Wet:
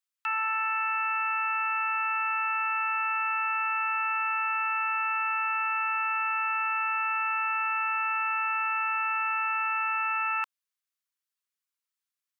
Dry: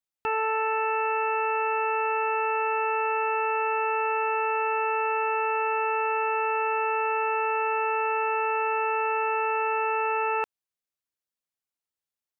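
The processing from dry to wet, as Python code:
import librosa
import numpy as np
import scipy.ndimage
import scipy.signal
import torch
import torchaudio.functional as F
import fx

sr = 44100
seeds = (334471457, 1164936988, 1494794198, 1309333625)

y = scipy.signal.sosfilt(scipy.signal.butter(8, 1000.0, 'highpass', fs=sr, output='sos'), x)
y = y * librosa.db_to_amplitude(1.5)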